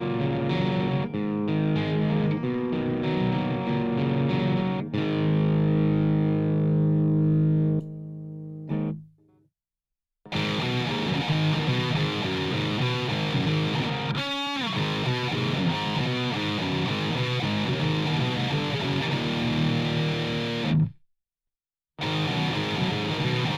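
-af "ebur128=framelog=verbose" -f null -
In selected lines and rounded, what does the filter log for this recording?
Integrated loudness:
  I:         -25.6 LUFS
  Threshold: -35.9 LUFS
Loudness range:
  LRA:         4.2 LU
  Threshold: -46.0 LUFS
  LRA low:   -27.9 LUFS
  LRA high:  -23.7 LUFS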